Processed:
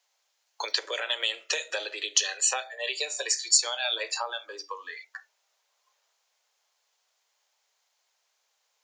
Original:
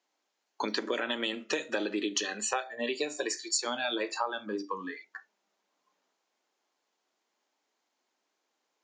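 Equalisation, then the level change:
Butterworth high-pass 480 Hz 36 dB per octave
dynamic equaliser 1,200 Hz, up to −4 dB, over −46 dBFS, Q 1.1
high-shelf EQ 2,200 Hz +10.5 dB
0.0 dB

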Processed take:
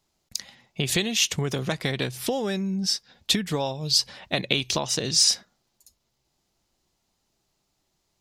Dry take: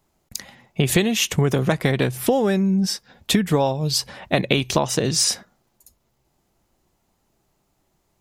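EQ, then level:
parametric band 4,600 Hz +11 dB 1.7 octaves
−8.5 dB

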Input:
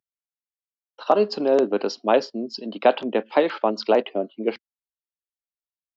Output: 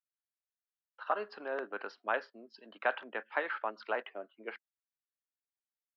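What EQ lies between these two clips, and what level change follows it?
resonant band-pass 1,600 Hz, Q 3.1
high-frequency loss of the air 110 metres
0.0 dB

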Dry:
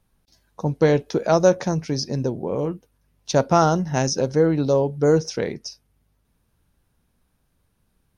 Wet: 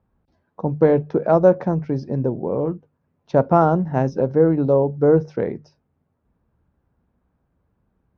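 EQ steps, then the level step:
high-pass filter 42 Hz
low-pass filter 1,200 Hz 12 dB per octave
mains-hum notches 50/100/150 Hz
+2.5 dB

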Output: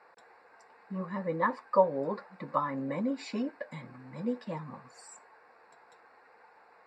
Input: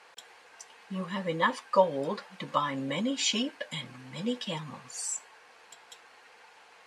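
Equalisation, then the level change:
moving average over 14 samples
low-shelf EQ 84 Hz −7.5 dB
0.0 dB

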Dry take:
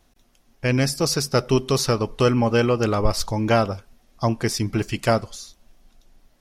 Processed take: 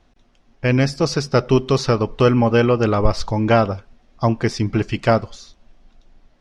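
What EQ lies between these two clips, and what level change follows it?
high-frequency loss of the air 89 metres
high-shelf EQ 8,000 Hz −9.5 dB
+4.0 dB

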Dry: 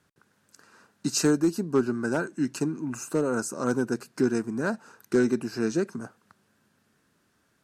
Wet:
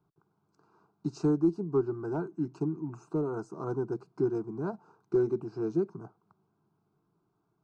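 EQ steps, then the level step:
head-to-tape spacing loss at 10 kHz 38 dB
parametric band 3,000 Hz −8 dB 0.79 octaves
phaser with its sweep stopped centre 360 Hz, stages 8
0.0 dB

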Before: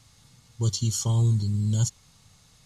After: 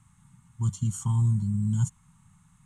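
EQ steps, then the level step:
drawn EQ curve 110 Hz 0 dB, 180 Hz +9 dB, 540 Hz −26 dB, 920 Hz +3 dB, 1,300 Hz +1 dB, 3,100 Hz −10 dB, 4,800 Hz −24 dB, 8,400 Hz +2 dB, 12,000 Hz −10 dB
−2.5 dB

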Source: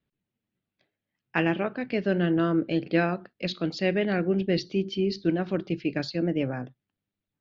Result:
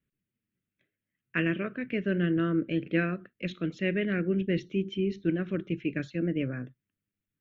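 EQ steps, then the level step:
phaser with its sweep stopped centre 2,000 Hz, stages 4
−1.0 dB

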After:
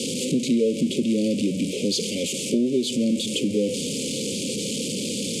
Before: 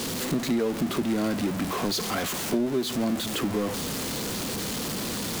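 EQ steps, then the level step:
Chebyshev band-stop filter 550–2,300 Hz, order 5
loudspeaker in its box 200–8,800 Hz, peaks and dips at 350 Hz −7 dB, 1,000 Hz −8 dB, 1,500 Hz −9 dB, 2,400 Hz −5 dB, 4,000 Hz −6 dB, 5,700 Hz −5 dB
+8.5 dB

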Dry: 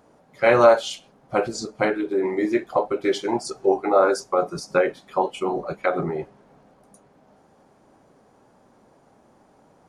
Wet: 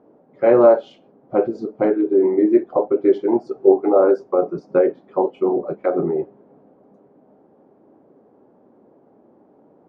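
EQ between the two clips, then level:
resonant band-pass 350 Hz, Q 1.4
high-frequency loss of the air 120 metres
+8.0 dB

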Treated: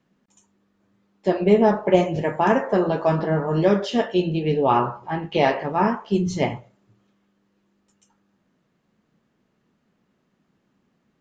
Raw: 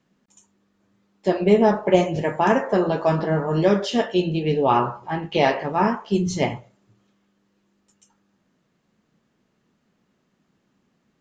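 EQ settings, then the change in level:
high-shelf EQ 4,500 Hz −6.5 dB
0.0 dB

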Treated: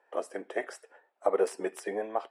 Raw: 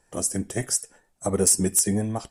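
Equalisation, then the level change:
high-pass filter 450 Hz 24 dB per octave
high-frequency loss of the air 490 metres
high-shelf EQ 9,400 Hz −5 dB
+4.0 dB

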